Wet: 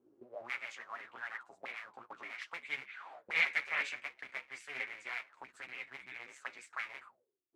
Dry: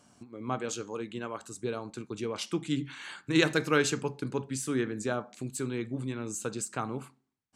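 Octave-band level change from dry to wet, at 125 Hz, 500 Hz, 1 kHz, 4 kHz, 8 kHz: under -30 dB, -20.5 dB, -9.0 dB, -9.0 dB, -21.5 dB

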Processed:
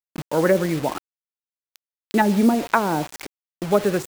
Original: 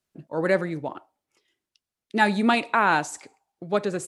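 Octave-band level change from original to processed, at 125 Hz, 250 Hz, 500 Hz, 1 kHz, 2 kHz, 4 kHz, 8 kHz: +6.5 dB, +6.0 dB, +5.0 dB, +0.5 dB, -3.0 dB, -1.0 dB, +3.0 dB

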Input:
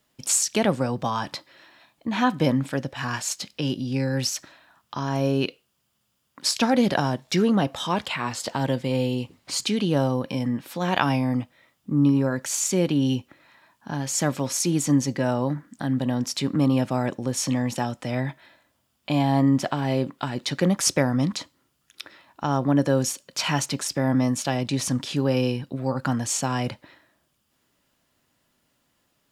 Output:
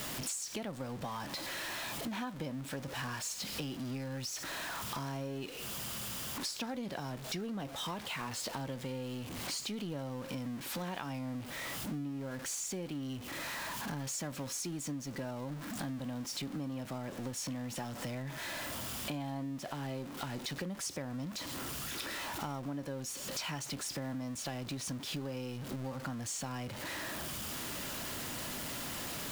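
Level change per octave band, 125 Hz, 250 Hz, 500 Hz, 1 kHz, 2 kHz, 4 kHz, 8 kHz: -15.5 dB, -16.5 dB, -16.0 dB, -14.0 dB, -9.5 dB, -9.5 dB, -11.5 dB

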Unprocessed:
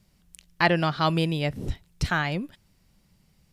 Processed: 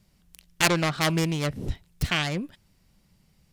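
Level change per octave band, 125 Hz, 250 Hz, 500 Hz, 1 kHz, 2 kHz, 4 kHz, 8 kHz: -0.5 dB, -0.5 dB, -1.5 dB, -3.5 dB, -0.5 dB, +3.5 dB, +14.0 dB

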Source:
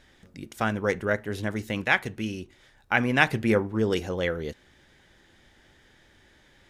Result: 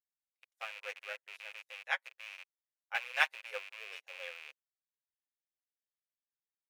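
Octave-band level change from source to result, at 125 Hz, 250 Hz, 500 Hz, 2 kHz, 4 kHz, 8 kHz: under -40 dB, under -40 dB, -22.5 dB, -10.0 dB, -7.5 dB, -11.0 dB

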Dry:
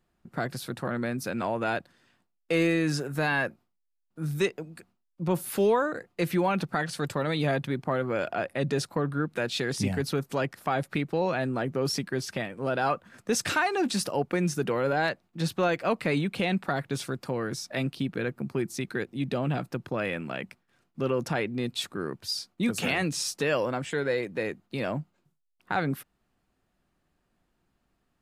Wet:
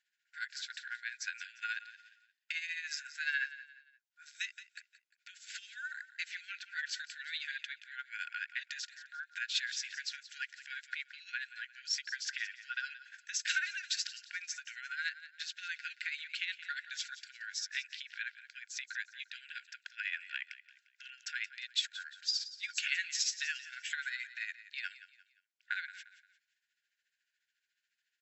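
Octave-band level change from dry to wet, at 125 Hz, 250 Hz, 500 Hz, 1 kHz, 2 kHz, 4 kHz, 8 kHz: under -40 dB, under -40 dB, under -40 dB, -19.5 dB, -4.0 dB, -2.0 dB, -4.0 dB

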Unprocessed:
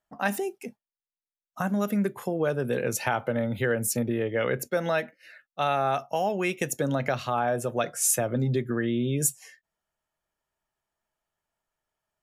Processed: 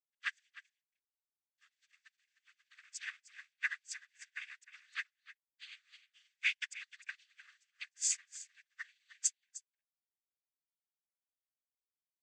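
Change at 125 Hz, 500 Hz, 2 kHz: under -40 dB, under -40 dB, -8.0 dB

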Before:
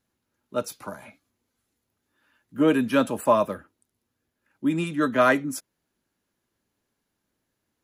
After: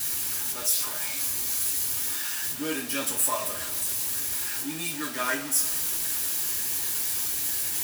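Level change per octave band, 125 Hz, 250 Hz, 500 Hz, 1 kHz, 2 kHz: -9.5 dB, -11.5 dB, -13.0 dB, -7.5 dB, -2.0 dB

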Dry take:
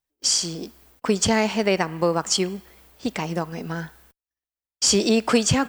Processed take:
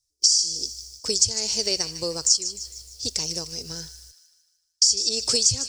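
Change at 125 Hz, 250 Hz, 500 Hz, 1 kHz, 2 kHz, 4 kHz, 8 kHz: -10.0 dB, -16.0 dB, -10.0 dB, -18.0 dB, -14.0 dB, +4.5 dB, +4.5 dB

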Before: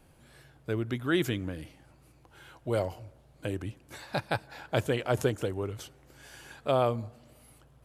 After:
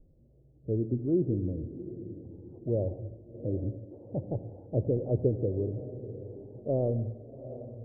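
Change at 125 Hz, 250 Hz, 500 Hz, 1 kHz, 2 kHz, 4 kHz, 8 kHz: +3.5 dB, +2.0 dB, -0.5 dB, -15.5 dB, under -40 dB, under -40 dB, under -30 dB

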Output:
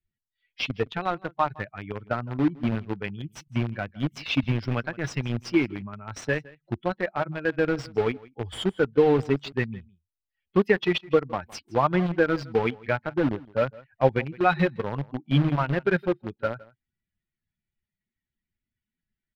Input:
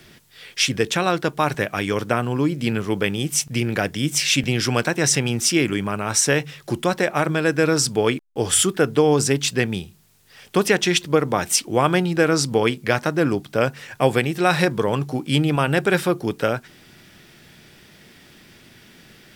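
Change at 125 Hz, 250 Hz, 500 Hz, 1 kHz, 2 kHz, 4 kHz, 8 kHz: -4.5 dB, -5.0 dB, -5.0 dB, -5.0 dB, -7.0 dB, -13.0 dB, under -25 dB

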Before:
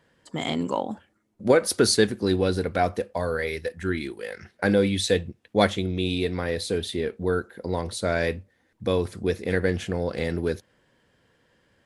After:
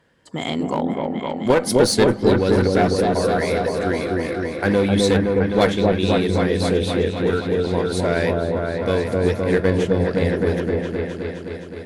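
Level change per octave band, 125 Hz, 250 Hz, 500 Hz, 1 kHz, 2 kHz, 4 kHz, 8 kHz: +7.5 dB, +7.5 dB, +6.5 dB, +6.5 dB, +4.0 dB, +2.5 dB, +1.5 dB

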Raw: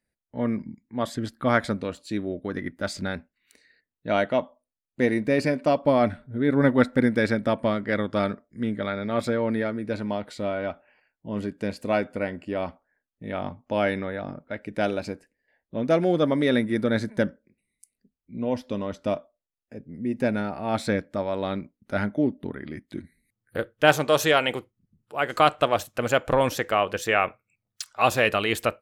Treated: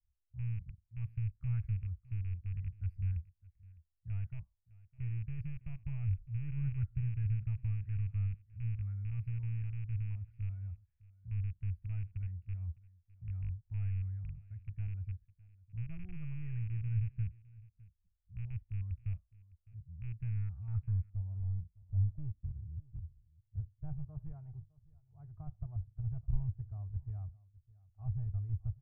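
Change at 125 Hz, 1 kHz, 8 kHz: -0.5 dB, under -40 dB, under -40 dB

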